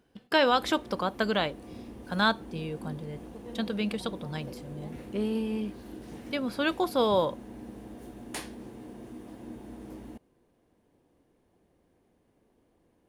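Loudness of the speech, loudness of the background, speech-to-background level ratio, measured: -29.5 LUFS, -44.5 LUFS, 15.0 dB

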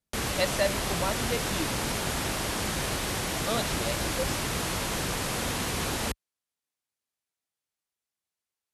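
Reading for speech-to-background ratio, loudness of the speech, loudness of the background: -4.0 dB, -33.5 LUFS, -29.5 LUFS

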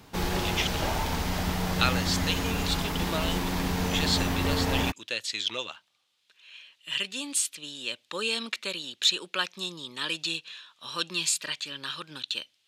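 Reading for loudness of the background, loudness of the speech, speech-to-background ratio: -29.0 LUFS, -30.5 LUFS, -1.5 dB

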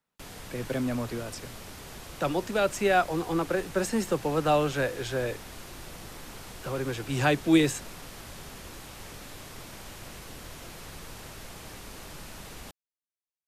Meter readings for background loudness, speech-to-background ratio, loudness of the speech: -43.5 LUFS, 15.5 dB, -28.0 LUFS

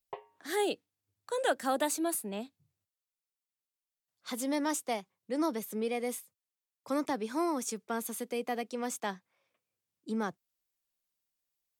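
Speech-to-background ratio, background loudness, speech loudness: 14.0 dB, -48.5 LUFS, -34.5 LUFS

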